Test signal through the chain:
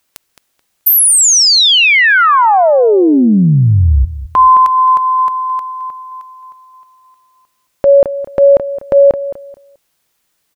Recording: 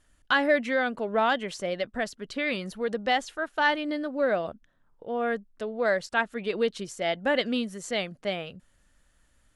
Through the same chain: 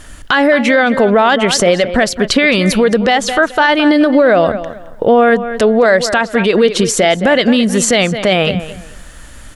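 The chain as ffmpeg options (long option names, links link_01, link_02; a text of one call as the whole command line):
ffmpeg -i in.wav -filter_complex "[0:a]acompressor=threshold=-38dB:ratio=2.5,asplit=2[link_01][link_02];[link_02]adelay=216,lowpass=frequency=4200:poles=1,volume=-14.5dB,asplit=2[link_03][link_04];[link_04]adelay=216,lowpass=frequency=4200:poles=1,volume=0.24,asplit=2[link_05][link_06];[link_06]adelay=216,lowpass=frequency=4200:poles=1,volume=0.24[link_07];[link_01][link_03][link_05][link_07]amix=inputs=4:normalize=0,alimiter=level_in=31dB:limit=-1dB:release=50:level=0:latency=1,volume=-1dB" out.wav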